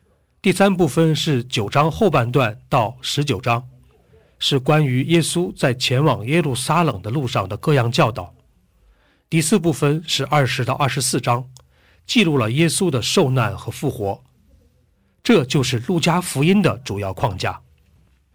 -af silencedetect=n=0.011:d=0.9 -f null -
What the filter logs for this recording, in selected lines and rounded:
silence_start: 8.31
silence_end: 9.32 | silence_duration: 1.01
silence_start: 14.17
silence_end: 15.25 | silence_duration: 1.08